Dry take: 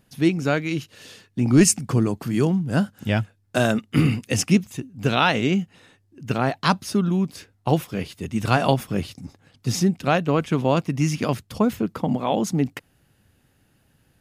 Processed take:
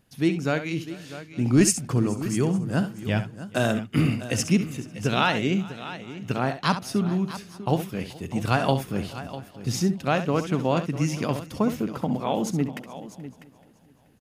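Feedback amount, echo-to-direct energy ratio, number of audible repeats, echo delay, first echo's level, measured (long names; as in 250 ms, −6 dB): repeats not evenly spaced, −9.0 dB, 6, 67 ms, −11.0 dB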